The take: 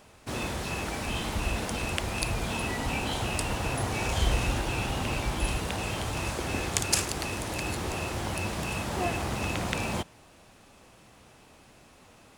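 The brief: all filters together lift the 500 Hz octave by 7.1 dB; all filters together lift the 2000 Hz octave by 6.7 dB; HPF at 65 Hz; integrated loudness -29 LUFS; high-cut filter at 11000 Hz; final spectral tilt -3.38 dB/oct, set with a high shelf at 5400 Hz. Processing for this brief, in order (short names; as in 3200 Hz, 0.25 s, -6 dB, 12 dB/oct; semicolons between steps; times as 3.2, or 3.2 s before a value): HPF 65 Hz; LPF 11000 Hz; bell 500 Hz +8.5 dB; bell 2000 Hz +8 dB; high shelf 5400 Hz +3.5 dB; gain -2.5 dB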